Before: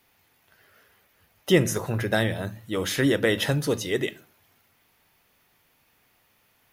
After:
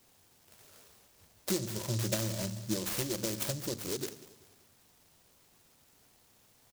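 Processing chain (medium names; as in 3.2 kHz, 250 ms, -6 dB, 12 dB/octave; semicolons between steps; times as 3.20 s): compression 10:1, threshold -34 dBFS, peak gain reduction 20 dB; 1.50–3.74 s: rippled EQ curve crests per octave 1.3, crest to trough 13 dB; feedback delay 193 ms, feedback 37%, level -17.5 dB; delay time shaken by noise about 5.5 kHz, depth 0.2 ms; trim +1 dB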